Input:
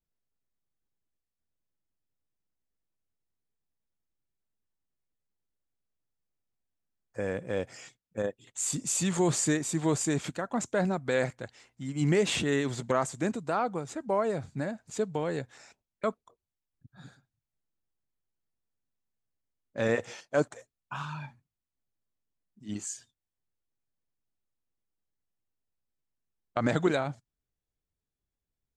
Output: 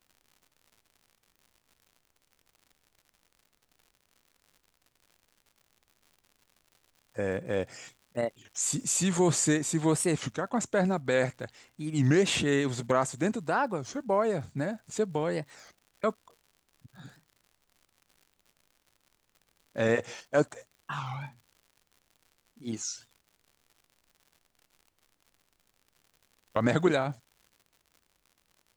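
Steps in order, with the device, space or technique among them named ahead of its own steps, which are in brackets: warped LP (warped record 33 1/3 rpm, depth 250 cents; crackle 110 per s -49 dBFS; pink noise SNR 45 dB); trim +1.5 dB

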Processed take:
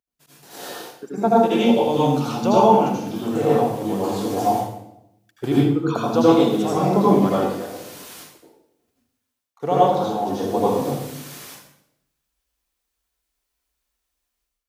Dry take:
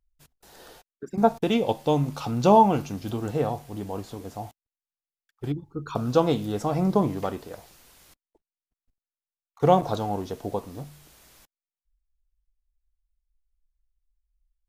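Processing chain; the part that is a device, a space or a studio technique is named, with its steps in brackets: far laptop microphone (reverberation RT60 0.85 s, pre-delay 73 ms, DRR -7 dB; high-pass 190 Hz 12 dB/octave; level rider gain up to 12 dB); trim -2 dB

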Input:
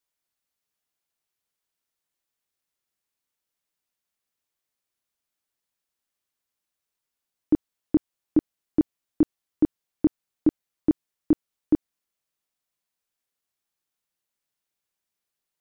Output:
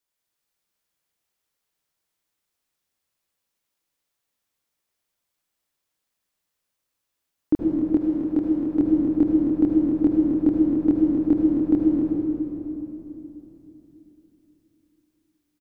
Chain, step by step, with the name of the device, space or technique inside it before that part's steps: cave (delay 265 ms -10 dB; reverberation RT60 3.4 s, pre-delay 66 ms, DRR -3 dB); 7.95–8.80 s: bass shelf 320 Hz -5.5 dB

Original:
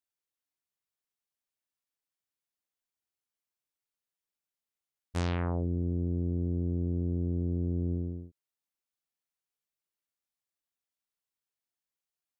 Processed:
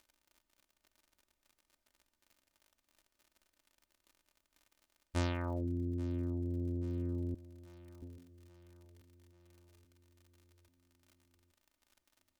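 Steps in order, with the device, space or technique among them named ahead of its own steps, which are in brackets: reverb removal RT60 1.1 s; 7.34–8.02 s: Bessel high-pass 1.7 kHz, order 2; vinyl LP (crackle 57 per s -50 dBFS; pink noise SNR 44 dB); comb 3.3 ms, depth 65%; feedback delay 834 ms, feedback 58%, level -19 dB; trim -2.5 dB

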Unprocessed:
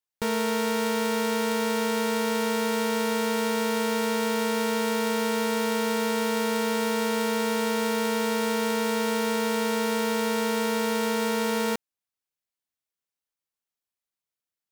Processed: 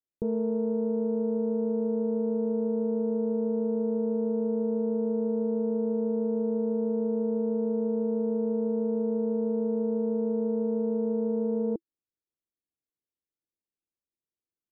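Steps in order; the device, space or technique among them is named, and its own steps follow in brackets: under water (low-pass 530 Hz 24 dB/octave; peaking EQ 330 Hz +7.5 dB 0.28 oct)

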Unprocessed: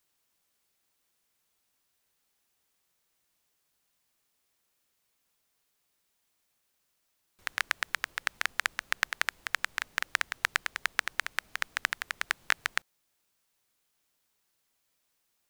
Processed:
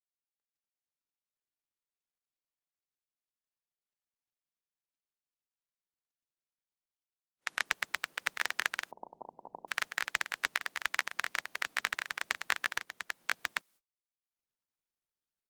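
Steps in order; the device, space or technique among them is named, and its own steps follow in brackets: delay 793 ms -5.5 dB; 8.91–9.68 s: steep low-pass 960 Hz 96 dB/octave; video call (high-pass 160 Hz 24 dB/octave; level rider gain up to 15 dB; gate -55 dBFS, range -33 dB; trim -6 dB; Opus 24 kbps 48 kHz)

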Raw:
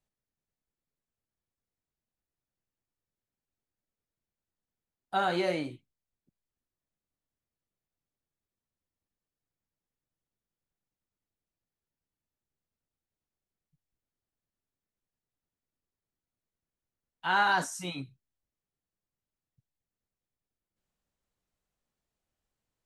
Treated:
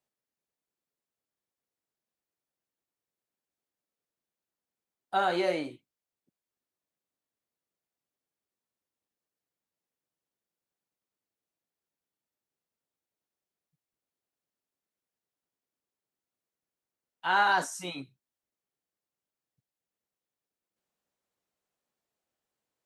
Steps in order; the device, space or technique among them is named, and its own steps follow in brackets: filter by subtraction (in parallel: low-pass 450 Hz 12 dB/octave + polarity flip)

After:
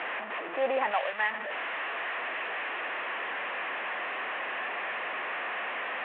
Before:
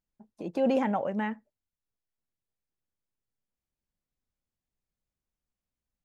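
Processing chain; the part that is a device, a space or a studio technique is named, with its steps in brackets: digital answering machine (band-pass 390–3000 Hz; one-bit delta coder 16 kbps, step -32 dBFS; cabinet simulation 420–3700 Hz, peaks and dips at 690 Hz +5 dB, 1.1 kHz +6 dB, 1.8 kHz +9 dB, 2.6 kHz +5 dB); 0.91–1.31 s: tilt EQ +3 dB/octave

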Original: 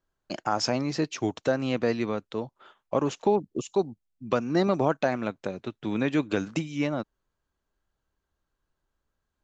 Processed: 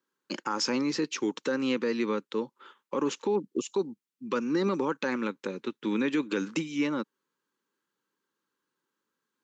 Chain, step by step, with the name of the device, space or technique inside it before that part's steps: PA system with an anti-feedback notch (high-pass 200 Hz 24 dB/octave; Butterworth band-stop 680 Hz, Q 2.1; peak limiter -21 dBFS, peak gain reduction 7.5 dB); trim +2 dB

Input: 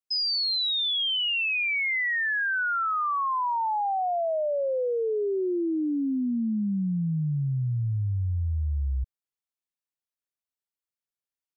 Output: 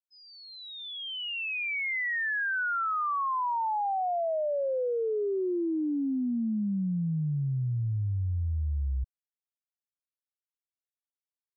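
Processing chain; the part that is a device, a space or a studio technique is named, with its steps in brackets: hearing-loss simulation (low-pass 3.2 kHz; expander -22 dBFS); trim +3 dB

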